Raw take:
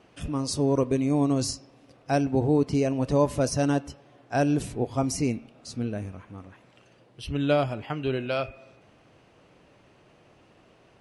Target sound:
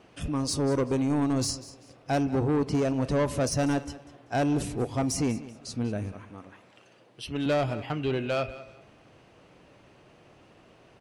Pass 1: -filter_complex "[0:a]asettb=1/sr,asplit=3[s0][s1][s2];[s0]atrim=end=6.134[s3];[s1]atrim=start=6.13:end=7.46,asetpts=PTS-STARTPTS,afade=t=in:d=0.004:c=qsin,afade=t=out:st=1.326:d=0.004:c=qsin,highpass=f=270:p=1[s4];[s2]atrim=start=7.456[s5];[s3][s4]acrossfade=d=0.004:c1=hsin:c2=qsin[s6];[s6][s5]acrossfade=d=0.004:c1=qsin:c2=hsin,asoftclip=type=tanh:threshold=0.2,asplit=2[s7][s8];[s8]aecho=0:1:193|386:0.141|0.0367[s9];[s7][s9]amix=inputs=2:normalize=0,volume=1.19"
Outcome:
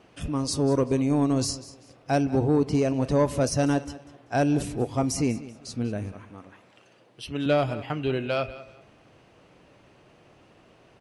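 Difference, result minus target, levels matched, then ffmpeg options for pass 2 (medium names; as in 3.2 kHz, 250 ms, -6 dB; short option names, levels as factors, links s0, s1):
saturation: distortion -10 dB
-filter_complex "[0:a]asettb=1/sr,asplit=3[s0][s1][s2];[s0]atrim=end=6.134[s3];[s1]atrim=start=6.13:end=7.46,asetpts=PTS-STARTPTS,afade=t=in:d=0.004:c=qsin,afade=t=out:st=1.326:d=0.004:c=qsin,highpass=f=270:p=1[s4];[s2]atrim=start=7.456[s5];[s3][s4]acrossfade=d=0.004:c1=hsin:c2=qsin[s6];[s6][s5]acrossfade=d=0.004:c1=qsin:c2=hsin,asoftclip=type=tanh:threshold=0.0794,asplit=2[s7][s8];[s8]aecho=0:1:193|386:0.141|0.0367[s9];[s7][s9]amix=inputs=2:normalize=0,volume=1.19"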